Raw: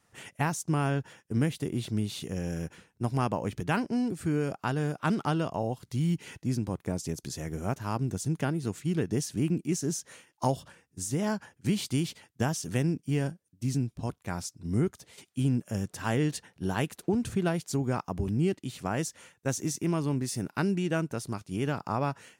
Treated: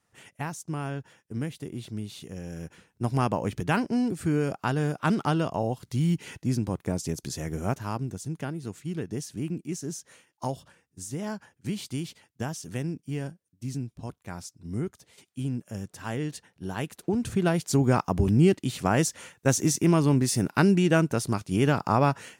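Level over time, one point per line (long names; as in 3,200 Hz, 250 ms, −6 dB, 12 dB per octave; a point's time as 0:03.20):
0:02.49 −5 dB
0:03.13 +3 dB
0:07.71 +3 dB
0:08.18 −4 dB
0:16.65 −4 dB
0:17.84 +7.5 dB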